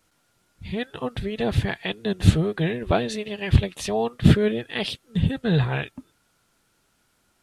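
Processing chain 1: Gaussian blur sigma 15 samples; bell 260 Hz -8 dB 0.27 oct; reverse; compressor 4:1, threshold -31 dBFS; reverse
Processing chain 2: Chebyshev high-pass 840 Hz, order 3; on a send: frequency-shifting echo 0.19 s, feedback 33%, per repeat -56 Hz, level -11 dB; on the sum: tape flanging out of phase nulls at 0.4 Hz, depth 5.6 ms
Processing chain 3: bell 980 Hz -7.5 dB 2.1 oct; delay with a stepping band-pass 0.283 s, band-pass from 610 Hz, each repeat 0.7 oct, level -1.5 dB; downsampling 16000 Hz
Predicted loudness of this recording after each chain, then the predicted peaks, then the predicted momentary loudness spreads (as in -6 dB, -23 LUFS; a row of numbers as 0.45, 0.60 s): -36.0, -36.5, -25.0 LUFS; -18.5, -17.5, -2.0 dBFS; 6, 8, 18 LU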